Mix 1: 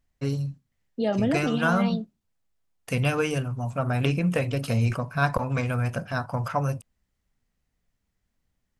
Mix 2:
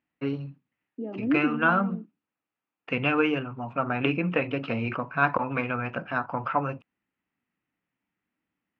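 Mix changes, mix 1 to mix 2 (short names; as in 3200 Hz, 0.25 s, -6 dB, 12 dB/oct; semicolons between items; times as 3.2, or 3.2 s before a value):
second voice: add band-pass 290 Hz, Q 3; master: add speaker cabinet 220–2900 Hz, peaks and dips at 310 Hz +7 dB, 610 Hz -3 dB, 900 Hz +3 dB, 1300 Hz +5 dB, 2600 Hz +6 dB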